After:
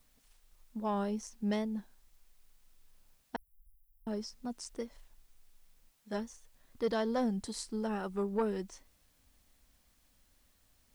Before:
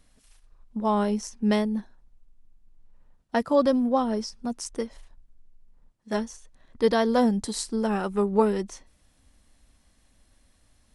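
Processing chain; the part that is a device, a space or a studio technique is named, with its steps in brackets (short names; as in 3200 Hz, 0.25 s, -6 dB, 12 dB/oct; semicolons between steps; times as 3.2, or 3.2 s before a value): compact cassette (soft clip -13.5 dBFS, distortion -19 dB; LPF 9800 Hz; wow and flutter; white noise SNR 35 dB); 3.36–4.07 inverse Chebyshev band-stop 220–3700 Hz, stop band 70 dB; gain -9 dB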